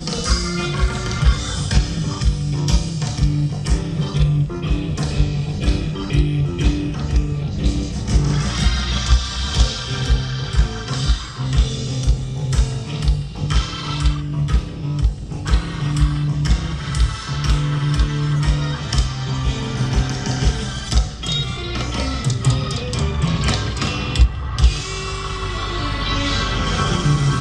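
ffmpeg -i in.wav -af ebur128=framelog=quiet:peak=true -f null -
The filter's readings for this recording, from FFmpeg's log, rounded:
Integrated loudness:
  I:         -20.6 LUFS
  Threshold: -30.6 LUFS
Loudness range:
  LRA:         1.5 LU
  Threshold: -40.7 LUFS
  LRA low:   -21.5 LUFS
  LRA high:  -20.0 LUFS
True peak:
  Peak:       -1.9 dBFS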